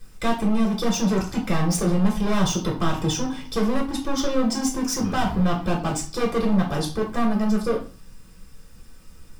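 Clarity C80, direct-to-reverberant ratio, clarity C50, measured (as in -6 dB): 13.5 dB, -2.5 dB, 7.5 dB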